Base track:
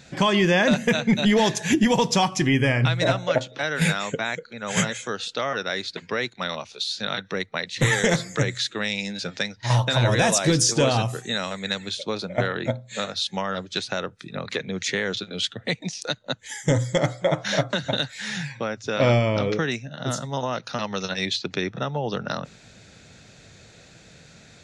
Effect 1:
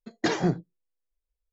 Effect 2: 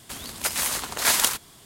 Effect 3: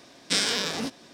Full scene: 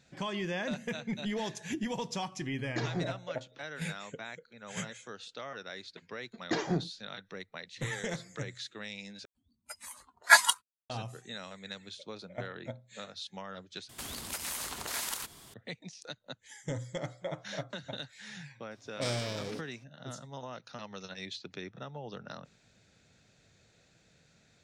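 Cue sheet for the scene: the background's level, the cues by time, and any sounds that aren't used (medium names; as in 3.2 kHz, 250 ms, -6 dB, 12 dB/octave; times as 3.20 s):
base track -16 dB
2.52 s: add 1 -11 dB
6.27 s: add 1 -6.5 dB
9.25 s: replace with 2 -3.5 dB + spectral contrast expander 4:1
13.89 s: replace with 2 -3 dB + compression 3:1, threshold -33 dBFS
18.71 s: add 3 -14.5 dB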